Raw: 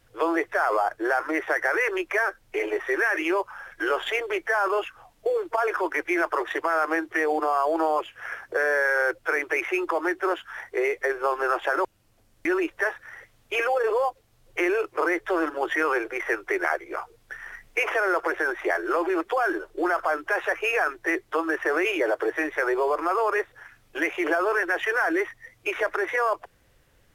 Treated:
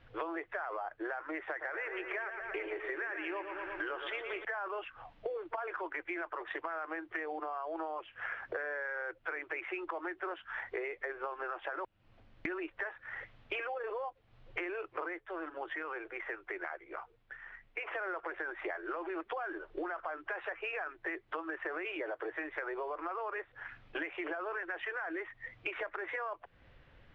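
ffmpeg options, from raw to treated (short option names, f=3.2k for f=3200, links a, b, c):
-filter_complex "[0:a]asettb=1/sr,asplit=3[a][b][c];[a]atrim=end=1.484[d];[b]atrim=start=1.48:end=4.45,asetpts=PTS-STARTPTS,afade=t=in:d=0.004:c=qsin,afade=t=out:st=2.966:d=0.004:c=qsin,aecho=1:1:115|230|345|460|575|690|805:0.355|0.209|0.124|0.0729|0.043|0.0254|0.015,atrim=end_sample=130977[e];[c]atrim=start=4.446[f];[d][e]acrossfade=d=0.004:c1=hsin:c2=qsin[g];[g][f]acrossfade=d=0.004:c1=qsin:c2=hsin,asplit=3[h][i][j];[h]atrim=end=15.26,asetpts=PTS-STARTPTS,afade=t=out:st=15.08:d=0.18:silence=0.251189[k];[i]atrim=start=15.26:end=17.92,asetpts=PTS-STARTPTS,volume=-12dB[l];[j]atrim=start=17.92,asetpts=PTS-STARTPTS,afade=t=in:d=0.18:silence=0.251189[m];[k][l][m]concat=n=3:v=0:a=1,lowpass=f=3.4k:w=0.5412,lowpass=f=3.4k:w=1.3066,equalizer=f=410:t=o:w=0.71:g=-3.5,acompressor=threshold=-38dB:ratio=10,volume=2dB"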